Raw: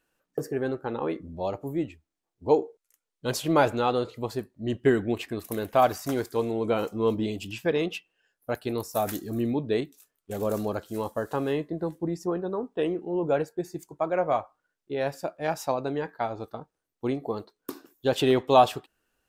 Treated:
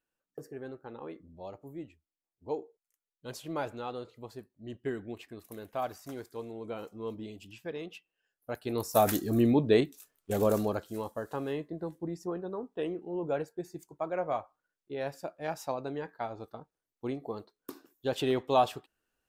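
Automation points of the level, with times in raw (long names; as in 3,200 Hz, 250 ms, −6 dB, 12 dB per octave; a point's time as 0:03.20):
0:07.87 −13.5 dB
0:08.61 −6.5 dB
0:08.95 +3 dB
0:10.38 +3 dB
0:11.10 −7 dB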